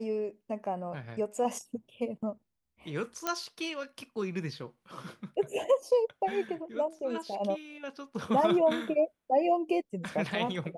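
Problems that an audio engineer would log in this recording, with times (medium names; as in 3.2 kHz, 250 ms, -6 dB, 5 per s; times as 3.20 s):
3.27 s: pop -14 dBFS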